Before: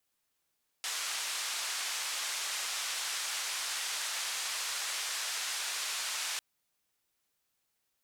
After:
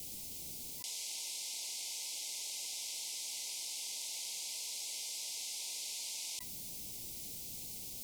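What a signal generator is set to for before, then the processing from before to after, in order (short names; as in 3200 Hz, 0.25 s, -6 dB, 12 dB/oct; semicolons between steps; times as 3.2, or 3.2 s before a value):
noise band 1000–7700 Hz, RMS -36 dBFS 5.55 s
FFT band-reject 1000–2000 Hz; EQ curve 210 Hz 0 dB, 740 Hz -14 dB, 1800 Hz -17 dB, 5000 Hz -5 dB; fast leveller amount 100%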